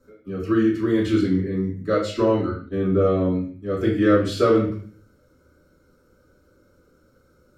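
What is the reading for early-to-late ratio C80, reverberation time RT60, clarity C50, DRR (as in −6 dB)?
9.5 dB, 0.45 s, 5.5 dB, −7.0 dB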